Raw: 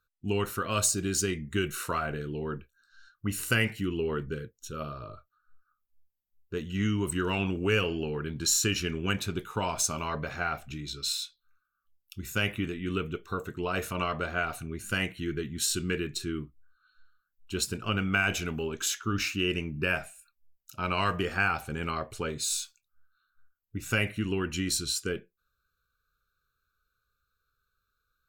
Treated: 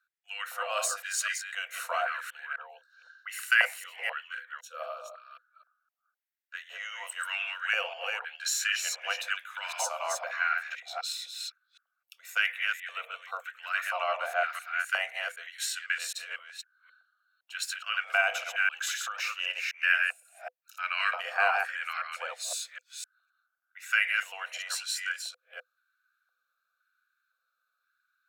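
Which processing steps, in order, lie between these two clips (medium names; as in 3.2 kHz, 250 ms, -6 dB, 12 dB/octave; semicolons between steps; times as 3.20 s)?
chunks repeated in reverse 256 ms, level -3.5 dB; LFO high-pass square 0.97 Hz 710–1600 Hz; rippled Chebyshev high-pass 490 Hz, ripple 6 dB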